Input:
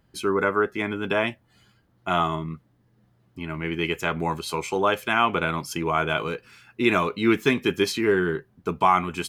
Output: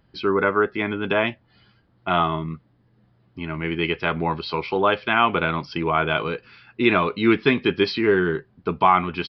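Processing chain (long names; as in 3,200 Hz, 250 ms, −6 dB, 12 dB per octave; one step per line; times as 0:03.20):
downsampling to 11,025 Hz
level +2.5 dB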